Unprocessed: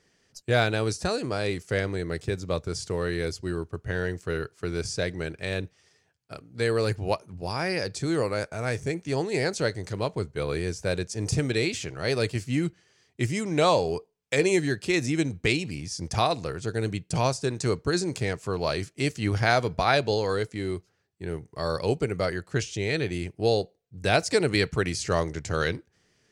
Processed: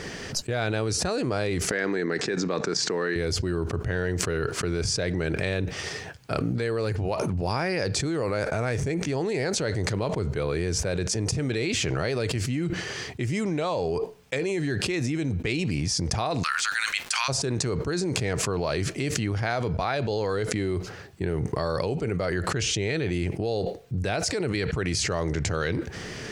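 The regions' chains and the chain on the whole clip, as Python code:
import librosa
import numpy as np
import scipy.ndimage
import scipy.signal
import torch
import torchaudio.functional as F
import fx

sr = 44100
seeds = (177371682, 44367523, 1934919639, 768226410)

y = fx.chain(x, sr, fx.level_steps(step_db=11),
    fx.cabinet(low_hz=200.0, low_slope=24, high_hz=7200.0, hz=(570.0, 1700.0, 3200.0), db=(-6, 6, -5)), at=(1.71, 3.16))
y = fx.steep_highpass(y, sr, hz=1200.0, slope=36, at=(16.42, 17.28), fade=0.02)
y = fx.dmg_crackle(y, sr, seeds[0], per_s=470.0, level_db=-54.0, at=(16.42, 17.28), fade=0.02)
y = fx.high_shelf(y, sr, hz=4900.0, db=-8.5)
y = fx.env_flatten(y, sr, amount_pct=100)
y = F.gain(torch.from_numpy(y), -8.5).numpy()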